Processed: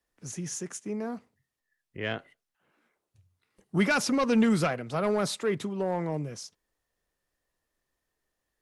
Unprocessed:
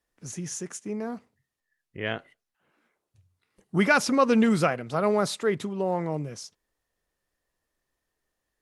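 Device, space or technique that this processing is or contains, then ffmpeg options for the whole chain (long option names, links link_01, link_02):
one-band saturation: -filter_complex "[0:a]acrossover=split=250|2500[link_01][link_02][link_03];[link_02]asoftclip=type=tanh:threshold=-21dB[link_04];[link_01][link_04][link_03]amix=inputs=3:normalize=0,volume=-1dB"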